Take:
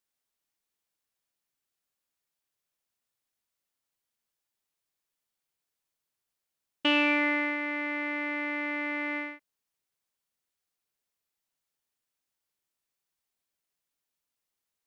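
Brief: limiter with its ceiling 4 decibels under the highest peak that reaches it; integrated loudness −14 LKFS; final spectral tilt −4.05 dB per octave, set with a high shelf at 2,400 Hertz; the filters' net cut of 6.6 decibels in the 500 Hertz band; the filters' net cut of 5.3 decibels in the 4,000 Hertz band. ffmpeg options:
ffmpeg -i in.wav -af "equalizer=frequency=500:width_type=o:gain=-8,highshelf=frequency=2400:gain=-3.5,equalizer=frequency=4000:width_type=o:gain=-5,volume=18.5dB,alimiter=limit=-3dB:level=0:latency=1" out.wav

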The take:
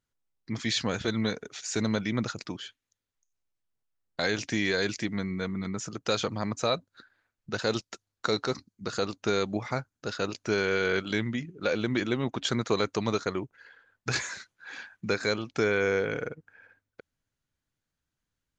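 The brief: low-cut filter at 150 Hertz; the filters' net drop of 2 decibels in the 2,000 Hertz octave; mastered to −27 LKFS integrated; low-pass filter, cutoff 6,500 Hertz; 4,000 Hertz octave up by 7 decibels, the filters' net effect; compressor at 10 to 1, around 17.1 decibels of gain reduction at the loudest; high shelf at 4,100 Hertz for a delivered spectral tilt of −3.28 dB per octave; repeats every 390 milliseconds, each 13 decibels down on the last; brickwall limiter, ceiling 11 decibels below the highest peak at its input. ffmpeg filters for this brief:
ffmpeg -i in.wav -af "highpass=150,lowpass=6500,equalizer=frequency=2000:width_type=o:gain=-5.5,equalizer=frequency=4000:width_type=o:gain=6.5,highshelf=frequency=4100:gain=6,acompressor=threshold=-37dB:ratio=10,alimiter=level_in=6.5dB:limit=-24dB:level=0:latency=1,volume=-6.5dB,aecho=1:1:390|780|1170:0.224|0.0493|0.0108,volume=16dB" out.wav

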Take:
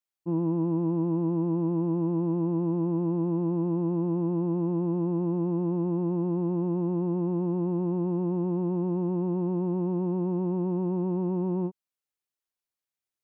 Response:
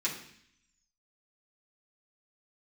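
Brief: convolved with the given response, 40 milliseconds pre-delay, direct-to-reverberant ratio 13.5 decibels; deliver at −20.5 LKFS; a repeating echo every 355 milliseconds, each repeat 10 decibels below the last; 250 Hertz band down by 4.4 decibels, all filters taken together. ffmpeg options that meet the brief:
-filter_complex "[0:a]equalizer=frequency=250:width_type=o:gain=-8.5,aecho=1:1:355|710|1065|1420:0.316|0.101|0.0324|0.0104,asplit=2[link_01][link_02];[1:a]atrim=start_sample=2205,adelay=40[link_03];[link_02][link_03]afir=irnorm=-1:irlink=0,volume=-19.5dB[link_04];[link_01][link_04]amix=inputs=2:normalize=0,volume=11dB"

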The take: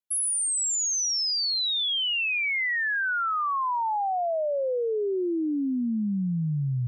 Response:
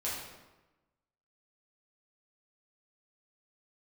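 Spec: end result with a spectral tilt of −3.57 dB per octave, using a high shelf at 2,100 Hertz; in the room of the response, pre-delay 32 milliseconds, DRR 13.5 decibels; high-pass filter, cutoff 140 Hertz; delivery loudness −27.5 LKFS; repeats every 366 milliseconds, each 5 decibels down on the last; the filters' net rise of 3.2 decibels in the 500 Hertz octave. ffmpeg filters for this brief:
-filter_complex "[0:a]highpass=140,equalizer=frequency=500:width_type=o:gain=4.5,highshelf=frequency=2100:gain=-7,aecho=1:1:366|732|1098|1464|1830|2196|2562:0.562|0.315|0.176|0.0988|0.0553|0.031|0.0173,asplit=2[link_01][link_02];[1:a]atrim=start_sample=2205,adelay=32[link_03];[link_02][link_03]afir=irnorm=-1:irlink=0,volume=-18dB[link_04];[link_01][link_04]amix=inputs=2:normalize=0,volume=-2dB"

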